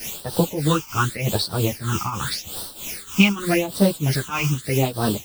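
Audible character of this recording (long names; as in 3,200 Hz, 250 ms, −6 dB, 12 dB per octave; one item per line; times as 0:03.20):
a quantiser's noise floor 6 bits, dither triangular
phaser sweep stages 8, 0.85 Hz, lowest notch 520–2,200 Hz
tremolo triangle 3.2 Hz, depth 85%
a shimmering, thickened sound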